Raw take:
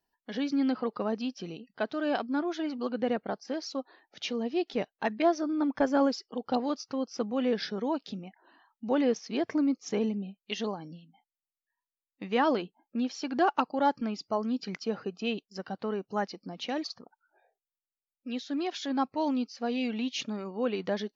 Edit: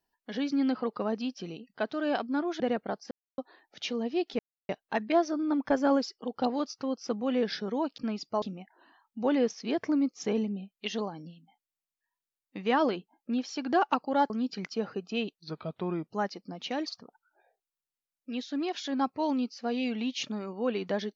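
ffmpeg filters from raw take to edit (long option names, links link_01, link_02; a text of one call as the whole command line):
ffmpeg -i in.wav -filter_complex "[0:a]asplit=10[link_01][link_02][link_03][link_04][link_05][link_06][link_07][link_08][link_09][link_10];[link_01]atrim=end=2.602[link_11];[link_02]atrim=start=2.998:end=3.51,asetpts=PTS-STARTPTS,afade=type=out:start_time=0.508:duration=0.004:curve=hsin[link_12];[link_03]atrim=start=3.51:end=3.78,asetpts=PTS-STARTPTS,volume=0[link_13];[link_04]atrim=start=3.78:end=4.79,asetpts=PTS-STARTPTS,afade=type=in:duration=0.004:curve=hsin,afade=type=out:start_time=1.006:duration=0.004:curve=hsin,apad=pad_dur=0.3[link_14];[link_05]atrim=start=4.79:end=8.082,asetpts=PTS-STARTPTS,afade=type=in:duration=0.004:curve=hsin[link_15];[link_06]atrim=start=13.958:end=14.402[link_16];[link_07]atrim=start=8.078:end=13.962[link_17];[link_08]atrim=start=14.398:end=15.464[link_18];[link_09]atrim=start=15.46:end=16.05,asetpts=PTS-STARTPTS,asetrate=36603,aresample=44100,atrim=end_sample=31348,asetpts=PTS-STARTPTS[link_19];[link_10]atrim=start=16.046[link_20];[link_12][link_13][link_14][link_15]concat=n=4:v=0:a=1[link_21];[link_11][link_21]acrossfade=duration=0.004:curve1=hsin:curve2=hsin[link_22];[link_22][link_16]acrossfade=duration=0.004:curve1=hsin:curve2=hsin[link_23];[link_23][link_17]acrossfade=duration=0.004:curve1=hsin:curve2=hsin[link_24];[link_24][link_18]acrossfade=duration=0.004:curve1=hsin:curve2=hsin[link_25];[link_25][link_19]acrossfade=duration=0.004:curve1=hsin:curve2=hsin[link_26];[link_26][link_20]acrossfade=duration=0.004:curve1=hsin:curve2=hsin" out.wav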